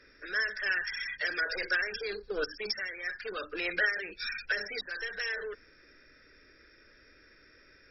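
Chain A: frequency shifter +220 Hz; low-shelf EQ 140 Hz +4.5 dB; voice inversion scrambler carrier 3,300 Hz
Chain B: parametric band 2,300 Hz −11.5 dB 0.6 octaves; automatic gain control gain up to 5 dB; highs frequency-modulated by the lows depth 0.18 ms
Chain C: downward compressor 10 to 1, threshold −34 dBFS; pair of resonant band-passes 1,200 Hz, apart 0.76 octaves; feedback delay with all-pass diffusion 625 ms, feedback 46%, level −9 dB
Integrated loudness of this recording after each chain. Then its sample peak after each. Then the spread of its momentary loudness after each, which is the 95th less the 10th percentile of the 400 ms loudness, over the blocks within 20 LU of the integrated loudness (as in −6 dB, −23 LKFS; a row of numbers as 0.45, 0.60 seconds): −33.5, −31.5, −43.5 LKFS; −15.5, −14.0, −27.5 dBFS; 8, 7, 20 LU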